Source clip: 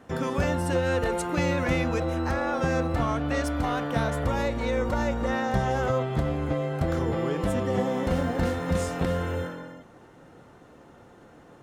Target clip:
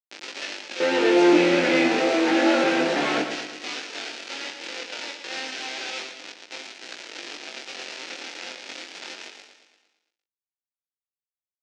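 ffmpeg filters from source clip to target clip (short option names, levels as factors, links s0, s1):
-filter_complex "[0:a]asoftclip=type=hard:threshold=0.0251,acrossover=split=3300[s0][s1];[s1]acompressor=threshold=0.00158:ratio=4:attack=1:release=60[s2];[s0][s2]amix=inputs=2:normalize=0,highshelf=f=2600:g=8.5,asettb=1/sr,asplit=3[s3][s4][s5];[s3]atrim=end=0.804[s6];[s4]atrim=start=0.8:end=3.22,asetpts=PTS-STARTPTS,afade=t=in:d=0.004:c=qsin,afade=t=out:st=2.416:d=0.004:c=qsin,acontrast=63[s7];[s5]atrim=start=3.216[s8];[s6][s7]acrossfade=d=0.004:c1=hsin:c2=qsin[s9];[s9][s8]acrossfade=d=0.004:c1=qsin:c2=hsin,acrusher=bits=4:mix=0:aa=0.000001,highpass=f=250:w=0.5412,highpass=f=250:w=1.3066,equalizer=f=330:t=q:w=4:g=6,equalizer=f=1100:t=q:w=4:g=-9,equalizer=f=2500:t=q:w=4:g=4,lowpass=f=5900:w=0.5412,lowpass=f=5900:w=1.3066,aecho=1:1:114|228|342|456|570|684|798:0.398|0.219|0.12|0.0662|0.0364|0.02|0.011,flanger=delay=19:depth=4.5:speed=0.3,volume=2.24"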